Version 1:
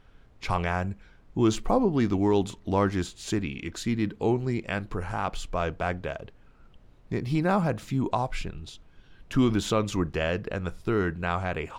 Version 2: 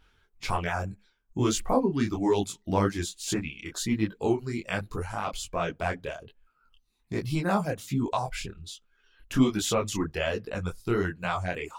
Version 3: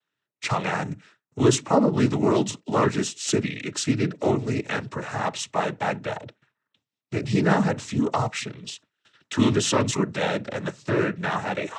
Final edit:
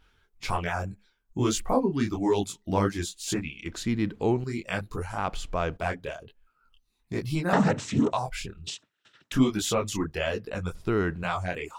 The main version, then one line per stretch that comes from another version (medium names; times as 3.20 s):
2
3.66–4.44 s: from 1
5.18–5.77 s: from 1
7.53–8.12 s: from 3
8.67–9.32 s: from 3
10.75–11.23 s: from 1